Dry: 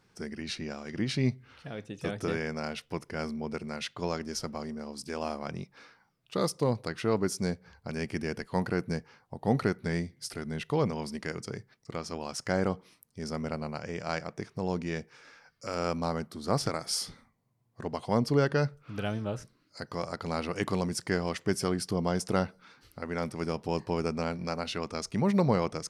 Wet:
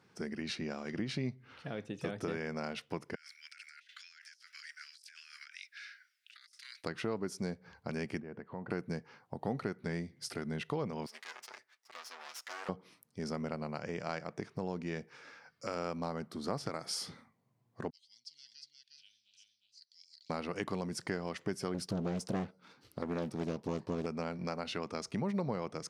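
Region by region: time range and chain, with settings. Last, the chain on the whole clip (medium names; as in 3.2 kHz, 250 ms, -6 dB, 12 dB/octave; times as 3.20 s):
3.15–6.84 s: steep high-pass 1.5 kHz 72 dB/octave + compressor with a negative ratio -55 dBFS
8.20–8.70 s: low-pass 1.5 kHz + compression 2.5:1, threshold -45 dBFS
11.06–12.69 s: comb filter that takes the minimum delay 8 ms + high-pass 1.2 kHz + compression 1.5:1, threshold -46 dBFS
17.90–20.30 s: inverse Chebyshev high-pass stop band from 1.3 kHz, stop band 60 dB + distance through air 140 m + delay 358 ms -3.5 dB
21.74–24.06 s: peaking EQ 1.7 kHz -6.5 dB 1.4 oct + waveshaping leveller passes 1 + loudspeaker Doppler distortion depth 0.69 ms
whole clip: high-pass 120 Hz 12 dB/octave; treble shelf 5.5 kHz -7.5 dB; compression 3:1, threshold -36 dBFS; trim +1 dB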